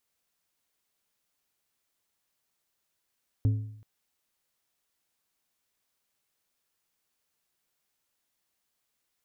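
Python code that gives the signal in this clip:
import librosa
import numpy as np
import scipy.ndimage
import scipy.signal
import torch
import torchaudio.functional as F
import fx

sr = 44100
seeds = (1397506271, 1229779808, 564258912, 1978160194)

y = fx.strike_metal(sr, length_s=0.38, level_db=-18.5, body='plate', hz=107.0, decay_s=0.7, tilt_db=12, modes=5)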